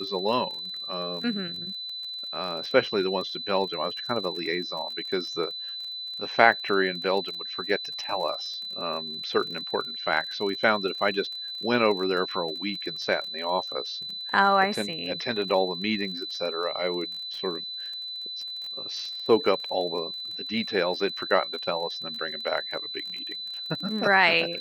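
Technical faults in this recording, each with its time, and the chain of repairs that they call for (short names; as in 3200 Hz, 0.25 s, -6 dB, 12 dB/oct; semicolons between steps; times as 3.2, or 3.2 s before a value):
crackle 29/s -34 dBFS
tone 4000 Hz -33 dBFS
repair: de-click; notch 4000 Hz, Q 30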